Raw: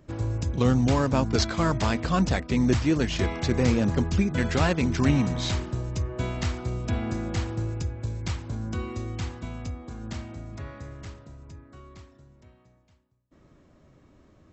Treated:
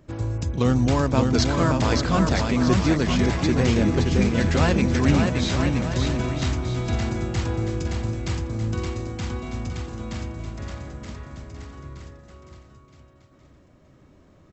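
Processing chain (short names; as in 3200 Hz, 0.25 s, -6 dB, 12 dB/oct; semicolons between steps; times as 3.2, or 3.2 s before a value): bouncing-ball echo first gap 0.57 s, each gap 0.7×, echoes 5; gain +1.5 dB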